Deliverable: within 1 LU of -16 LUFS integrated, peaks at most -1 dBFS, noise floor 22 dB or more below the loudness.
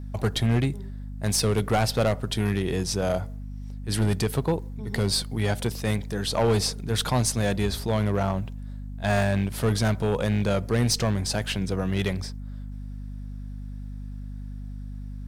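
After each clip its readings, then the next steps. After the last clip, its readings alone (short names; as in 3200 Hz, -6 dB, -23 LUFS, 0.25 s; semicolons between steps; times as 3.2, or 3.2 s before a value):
clipped 1.5%; flat tops at -16.5 dBFS; hum 50 Hz; harmonics up to 250 Hz; hum level -33 dBFS; loudness -25.5 LUFS; peak -16.5 dBFS; loudness target -16.0 LUFS
-> clip repair -16.5 dBFS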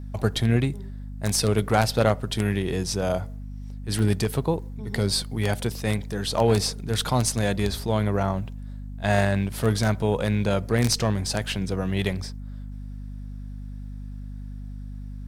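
clipped 0.0%; hum 50 Hz; harmonics up to 250 Hz; hum level -33 dBFS
-> notches 50/100/150/200/250 Hz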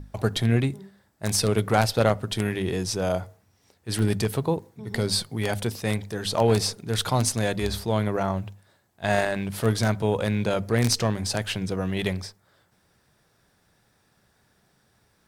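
hum none; loudness -25.5 LUFS; peak -6.5 dBFS; loudness target -16.0 LUFS
-> gain +9.5 dB; limiter -1 dBFS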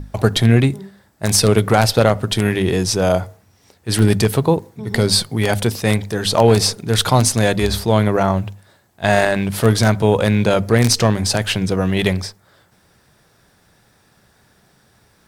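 loudness -16.5 LUFS; peak -1.0 dBFS; noise floor -56 dBFS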